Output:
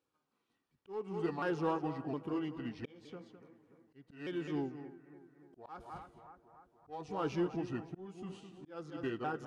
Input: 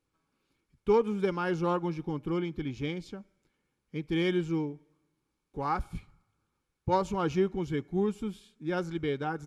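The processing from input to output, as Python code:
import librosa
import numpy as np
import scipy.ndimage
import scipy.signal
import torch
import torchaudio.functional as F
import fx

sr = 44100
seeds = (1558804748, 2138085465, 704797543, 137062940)

p1 = fx.pitch_ramps(x, sr, semitones=-3.5, every_ms=711)
p2 = fx.highpass(p1, sr, hz=300.0, slope=6)
p3 = fx.high_shelf(p2, sr, hz=6100.0, db=-7.5)
p4 = p3 + 10.0 ** (-12.5 / 20.0) * np.pad(p3, (int(208 * sr / 1000.0), 0))[:len(p3)]
p5 = np.clip(p4, -10.0 ** (-31.0 / 20.0), 10.0 ** (-31.0 / 20.0))
p6 = p4 + (p5 * 10.0 ** (-6.5 / 20.0))
p7 = fx.notch(p6, sr, hz=2100.0, q=7.7)
p8 = fx.echo_bbd(p7, sr, ms=290, stages=4096, feedback_pct=60, wet_db=-18.5)
p9 = fx.auto_swell(p8, sr, attack_ms=408.0)
p10 = fx.peak_eq(p9, sr, hz=520.0, db=3.5, octaves=0.53)
y = p10 * 10.0 ** (-5.0 / 20.0)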